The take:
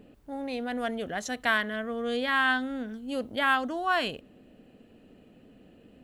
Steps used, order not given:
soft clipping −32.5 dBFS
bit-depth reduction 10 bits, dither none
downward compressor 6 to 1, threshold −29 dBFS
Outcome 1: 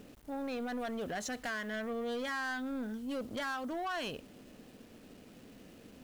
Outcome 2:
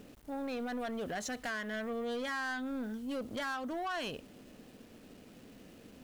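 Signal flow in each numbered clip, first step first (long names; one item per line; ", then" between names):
downward compressor, then bit-depth reduction, then soft clipping
bit-depth reduction, then downward compressor, then soft clipping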